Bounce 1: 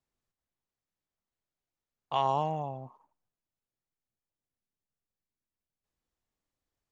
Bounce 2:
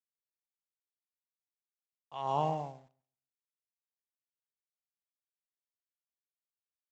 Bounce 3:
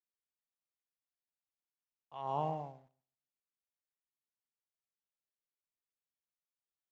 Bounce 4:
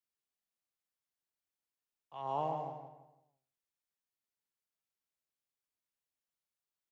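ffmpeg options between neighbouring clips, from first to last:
-filter_complex "[0:a]aresample=16000,aeval=exprs='val(0)*gte(abs(val(0)),0.00376)':c=same,aresample=44100,asplit=2[a][b];[b]adelay=138,lowpass=f=3.9k:p=1,volume=-12.5dB,asplit=2[c][d];[d]adelay=138,lowpass=f=3.9k:p=1,volume=0.22,asplit=2[e][f];[f]adelay=138,lowpass=f=3.9k:p=1,volume=0.22[g];[a][c][e][g]amix=inputs=4:normalize=0,aeval=exprs='val(0)*pow(10,-28*(0.5-0.5*cos(2*PI*0.81*n/s))/20)':c=same"
-af "lowpass=f=2.3k:p=1,volume=-4dB"
-filter_complex "[0:a]acrossover=split=190|650|1200[a][b][c][d];[a]acompressor=threshold=-54dB:ratio=6[e];[e][b][c][d]amix=inputs=4:normalize=0,asplit=2[f][g];[g]adelay=166,lowpass=f=2.7k:p=1,volume=-7dB,asplit=2[h][i];[i]adelay=166,lowpass=f=2.7k:p=1,volume=0.34,asplit=2[j][k];[k]adelay=166,lowpass=f=2.7k:p=1,volume=0.34,asplit=2[l][m];[m]adelay=166,lowpass=f=2.7k:p=1,volume=0.34[n];[f][h][j][l][n]amix=inputs=5:normalize=0"

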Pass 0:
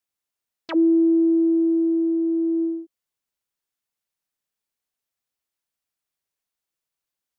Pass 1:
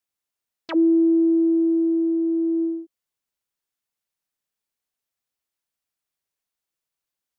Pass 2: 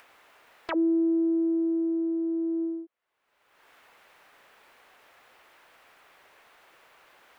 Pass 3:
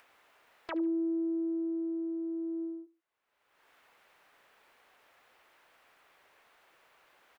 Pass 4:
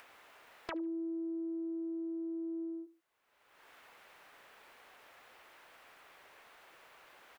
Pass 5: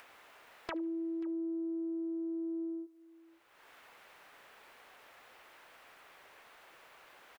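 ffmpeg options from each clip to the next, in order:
-af anull
-filter_complex "[0:a]acrossover=split=380 2600:gain=0.158 1 0.0708[a][b][c];[a][b][c]amix=inputs=3:normalize=0,acompressor=mode=upward:threshold=-28dB:ratio=2.5"
-af "aecho=1:1:72|144:0.106|0.0307,volume=-7dB"
-af "acompressor=threshold=-45dB:ratio=4,volume=5.5dB"
-af "aecho=1:1:534:0.0944,volume=1dB"

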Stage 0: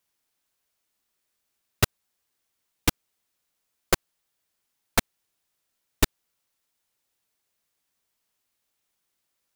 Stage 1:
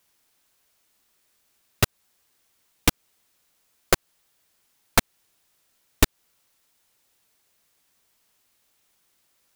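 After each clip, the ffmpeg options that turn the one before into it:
-af "acompressor=threshold=-22dB:ratio=3,alimiter=level_in=11dB:limit=-1dB:release=50:level=0:latency=1,volume=-1dB"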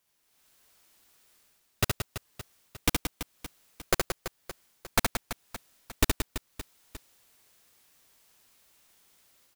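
-af "dynaudnorm=f=230:g=3:m=10.5dB,aecho=1:1:70|175|332.5|568.8|923.1:0.631|0.398|0.251|0.158|0.1,volume=-8dB"

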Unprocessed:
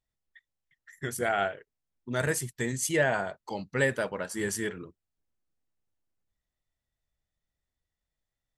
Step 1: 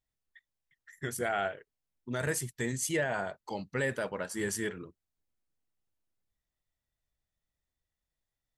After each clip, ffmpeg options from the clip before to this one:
-af "alimiter=limit=-19dB:level=0:latency=1:release=36,volume=-2dB"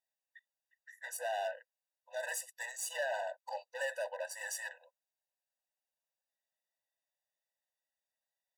-af "aeval=exprs='0.0944*(cos(1*acos(clip(val(0)/0.0944,-1,1)))-cos(1*PI/2))+0.0106*(cos(4*acos(clip(val(0)/0.0944,-1,1)))-cos(4*PI/2))':c=same,volume=30dB,asoftclip=hard,volume=-30dB,afftfilt=real='re*eq(mod(floor(b*sr/1024/500),2),1)':imag='im*eq(mod(floor(b*sr/1024/500),2),1)':win_size=1024:overlap=0.75"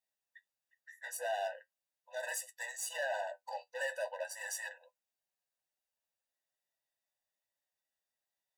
-af "flanger=delay=9.5:depth=2.8:regen=50:speed=0.42:shape=triangular,volume=4dB"

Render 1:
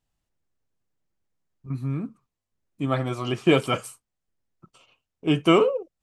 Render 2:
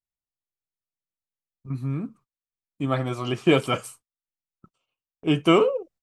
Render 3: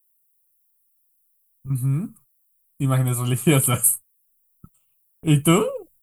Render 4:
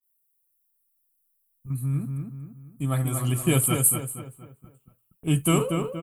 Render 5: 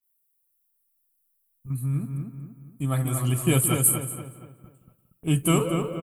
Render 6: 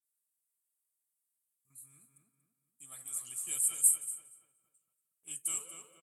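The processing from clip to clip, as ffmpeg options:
-af "agate=range=-21dB:threshold=-51dB:ratio=16:detection=peak"
-af "asubboost=boost=6:cutoff=170,aexciter=amount=13.9:drive=9.7:freq=8.5k"
-filter_complex "[0:a]asplit=2[a][b];[b]adelay=236,lowpass=f=2.6k:p=1,volume=-5dB,asplit=2[c][d];[d]adelay=236,lowpass=f=2.6k:p=1,volume=0.43,asplit=2[e][f];[f]adelay=236,lowpass=f=2.6k:p=1,volume=0.43,asplit=2[g][h];[h]adelay=236,lowpass=f=2.6k:p=1,volume=0.43,asplit=2[i][j];[j]adelay=236,lowpass=f=2.6k:p=1,volume=0.43[k];[a][c][e][g][i][k]amix=inputs=6:normalize=0,adynamicequalizer=threshold=0.0158:dfrequency=4600:dqfactor=0.7:tfrequency=4600:tqfactor=0.7:attack=5:release=100:ratio=0.375:range=1.5:mode=boostabove:tftype=highshelf,volume=-5.5dB"
-filter_complex "[0:a]asplit=2[a][b];[b]adelay=173,lowpass=f=3.7k:p=1,volume=-13dB,asplit=2[c][d];[d]adelay=173,lowpass=f=3.7k:p=1,volume=0.33,asplit=2[e][f];[f]adelay=173,lowpass=f=3.7k:p=1,volume=0.33[g];[a][c][e][g]amix=inputs=4:normalize=0"
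-af "bandpass=f=7.9k:t=q:w=2.6:csg=0"

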